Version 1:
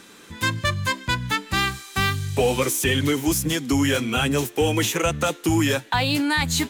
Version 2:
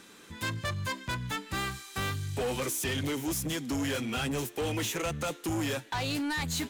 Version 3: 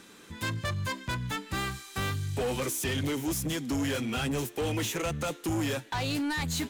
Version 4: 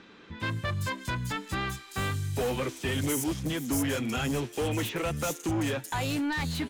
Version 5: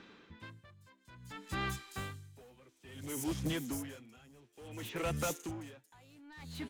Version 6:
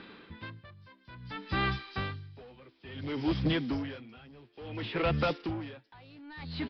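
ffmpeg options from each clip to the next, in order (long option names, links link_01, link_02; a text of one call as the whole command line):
ffmpeg -i in.wav -af "asoftclip=type=tanh:threshold=-21.5dB,volume=-6dB" out.wav
ffmpeg -i in.wav -af "lowshelf=frequency=420:gain=2.5" out.wav
ffmpeg -i in.wav -filter_complex "[0:a]acrossover=split=4500[link_01][link_02];[link_02]adelay=400[link_03];[link_01][link_03]amix=inputs=2:normalize=0,volume=1dB" out.wav
ffmpeg -i in.wav -af "aeval=exprs='val(0)*pow(10,-27*(0.5-0.5*cos(2*PI*0.58*n/s))/20)':channel_layout=same,volume=-3.5dB" out.wav
ffmpeg -i in.wav -af "aresample=11025,aresample=44100,volume=7dB" out.wav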